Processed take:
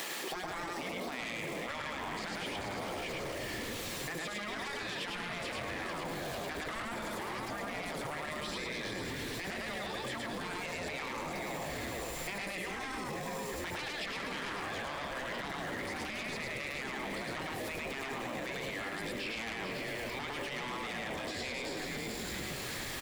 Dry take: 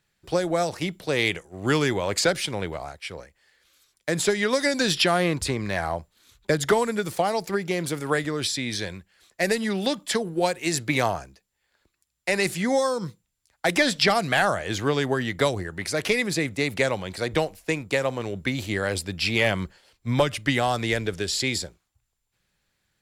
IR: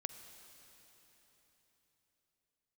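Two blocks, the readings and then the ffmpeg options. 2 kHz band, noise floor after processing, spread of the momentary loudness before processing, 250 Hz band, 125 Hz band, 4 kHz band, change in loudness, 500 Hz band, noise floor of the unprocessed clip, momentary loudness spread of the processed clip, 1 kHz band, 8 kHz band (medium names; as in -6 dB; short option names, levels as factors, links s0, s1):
-10.0 dB, -40 dBFS, 9 LU, -14.0 dB, -15.5 dB, -11.5 dB, -13.0 dB, -15.5 dB, -77 dBFS, 1 LU, -10.5 dB, -12.5 dB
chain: -filter_complex "[0:a]aeval=exprs='val(0)+0.5*0.0188*sgn(val(0))':c=same,highpass=f=270:w=0.5412,highpass=f=270:w=1.3066,bandreject=f=1500:w=6,asplit=7[s0][s1][s2][s3][s4][s5][s6];[s1]adelay=442,afreqshift=-94,volume=0.251[s7];[s2]adelay=884,afreqshift=-188,volume=0.141[s8];[s3]adelay=1326,afreqshift=-282,volume=0.0785[s9];[s4]adelay=1768,afreqshift=-376,volume=0.0442[s10];[s5]adelay=2210,afreqshift=-470,volume=0.0248[s11];[s6]adelay=2652,afreqshift=-564,volume=0.0138[s12];[s0][s7][s8][s9][s10][s11][s12]amix=inputs=7:normalize=0,acrossover=split=2900[s13][s14];[s14]acompressor=threshold=0.00708:ratio=4:attack=1:release=60[s15];[s13][s15]amix=inputs=2:normalize=0,asplit=2[s16][s17];[1:a]atrim=start_sample=2205,adelay=107[s18];[s17][s18]afir=irnorm=-1:irlink=0,volume=1.19[s19];[s16][s19]amix=inputs=2:normalize=0,asoftclip=type=tanh:threshold=0.0841,afftfilt=real='re*lt(hypot(re,im),0.178)':imag='im*lt(hypot(re,im),0.178)':win_size=1024:overlap=0.75,alimiter=level_in=1.68:limit=0.0631:level=0:latency=1:release=14,volume=0.596,acompressor=threshold=0.00708:ratio=6,volume=2.11"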